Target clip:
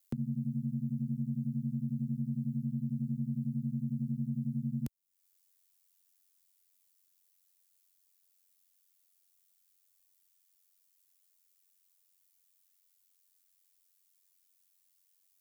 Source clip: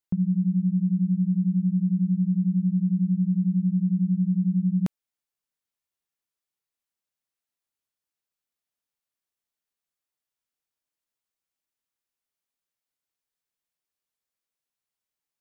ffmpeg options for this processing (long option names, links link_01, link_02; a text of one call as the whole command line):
ffmpeg -i in.wav -filter_complex "[0:a]crystalizer=i=7:c=0,aeval=exprs='val(0)*sin(2*PI*46*n/s)':channel_layout=same,acrossover=split=89|420[link_01][link_02][link_03];[link_01]acompressor=threshold=-47dB:ratio=4[link_04];[link_02]acompressor=threshold=-35dB:ratio=4[link_05];[link_03]acompressor=threshold=-52dB:ratio=4[link_06];[link_04][link_05][link_06]amix=inputs=3:normalize=0" out.wav